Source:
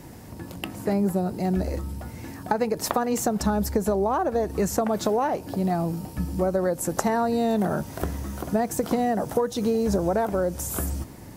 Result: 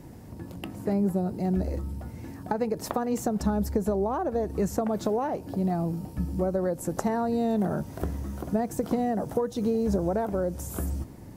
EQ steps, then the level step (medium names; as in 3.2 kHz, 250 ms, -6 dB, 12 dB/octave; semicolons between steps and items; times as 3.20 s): tilt shelf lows +4 dB, about 740 Hz; -5.0 dB